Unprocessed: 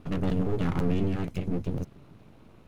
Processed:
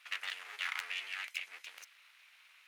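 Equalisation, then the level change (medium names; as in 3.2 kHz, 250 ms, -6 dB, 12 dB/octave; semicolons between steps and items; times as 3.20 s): ladder high-pass 1.7 kHz, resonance 40%; +12.5 dB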